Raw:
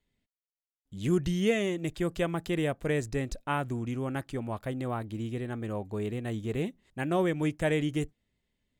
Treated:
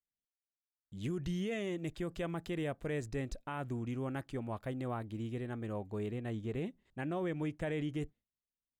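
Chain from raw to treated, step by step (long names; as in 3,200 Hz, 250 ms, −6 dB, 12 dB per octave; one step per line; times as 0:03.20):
noise gate with hold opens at −58 dBFS
high-shelf EQ 5,000 Hz −5 dB, from 0:06.11 −10.5 dB
brickwall limiter −24 dBFS, peak gain reduction 9 dB
level −5 dB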